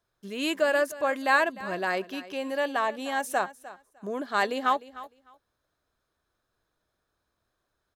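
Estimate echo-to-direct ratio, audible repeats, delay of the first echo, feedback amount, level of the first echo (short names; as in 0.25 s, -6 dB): -17.0 dB, 2, 0.303 s, 17%, -17.0 dB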